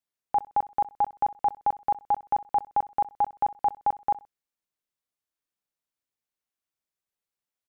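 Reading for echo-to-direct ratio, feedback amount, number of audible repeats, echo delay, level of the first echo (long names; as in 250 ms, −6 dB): −19.0 dB, 27%, 2, 63 ms, −19.5 dB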